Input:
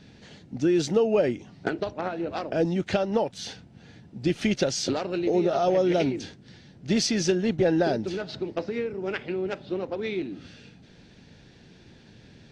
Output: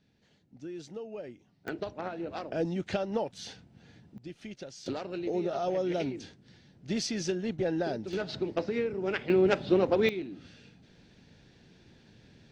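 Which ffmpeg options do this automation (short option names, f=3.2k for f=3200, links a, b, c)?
-af "asetnsamples=n=441:p=0,asendcmd='1.68 volume volume -6.5dB;4.18 volume volume -19dB;4.86 volume volume -8dB;8.13 volume volume -1dB;9.3 volume volume 6dB;10.09 volume volume -6dB',volume=-19dB"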